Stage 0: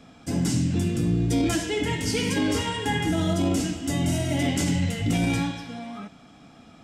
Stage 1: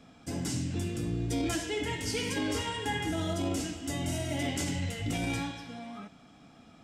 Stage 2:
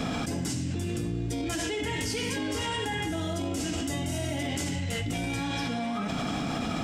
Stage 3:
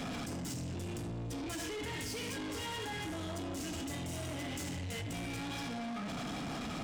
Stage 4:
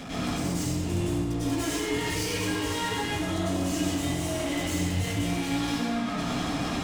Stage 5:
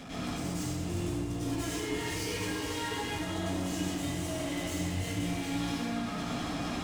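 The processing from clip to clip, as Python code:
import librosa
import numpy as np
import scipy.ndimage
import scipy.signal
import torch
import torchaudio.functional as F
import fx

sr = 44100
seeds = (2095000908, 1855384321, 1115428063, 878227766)

y1 = fx.dynamic_eq(x, sr, hz=180.0, q=1.3, threshold_db=-38.0, ratio=4.0, max_db=-7)
y1 = F.gain(torch.from_numpy(y1), -5.5).numpy()
y2 = fx.env_flatten(y1, sr, amount_pct=100)
y2 = F.gain(torch.from_numpy(y2), -2.0).numpy()
y3 = 10.0 ** (-36.0 / 20.0) * np.tanh(y2 / 10.0 ** (-36.0 / 20.0))
y3 = F.gain(torch.from_numpy(y3), -1.5).numpy()
y4 = fx.rev_plate(y3, sr, seeds[0], rt60_s=0.89, hf_ratio=0.95, predelay_ms=85, drr_db=-9.5)
y5 = fx.echo_feedback(y4, sr, ms=365, feedback_pct=51, wet_db=-9)
y5 = F.gain(torch.from_numpy(y5), -6.0).numpy()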